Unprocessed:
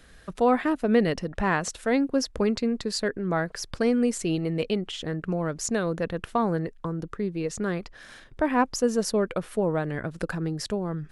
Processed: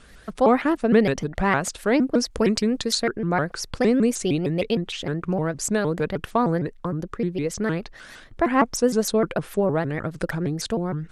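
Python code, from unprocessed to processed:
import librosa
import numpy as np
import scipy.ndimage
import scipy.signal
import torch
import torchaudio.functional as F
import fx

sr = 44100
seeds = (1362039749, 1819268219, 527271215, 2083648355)

y = fx.high_shelf(x, sr, hz=3700.0, db=9.0, at=(2.31, 2.95))
y = fx.vibrato_shape(y, sr, shape='saw_up', rate_hz=6.5, depth_cents=250.0)
y = F.gain(torch.from_numpy(y), 3.5).numpy()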